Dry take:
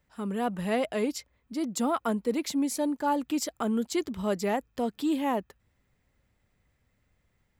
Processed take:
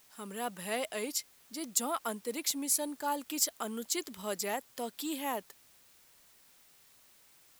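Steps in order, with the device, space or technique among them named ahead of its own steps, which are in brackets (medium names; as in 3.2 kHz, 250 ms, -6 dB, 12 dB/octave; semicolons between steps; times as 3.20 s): turntable without a phono preamp (RIAA curve recording; white noise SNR 25 dB); trim -5.5 dB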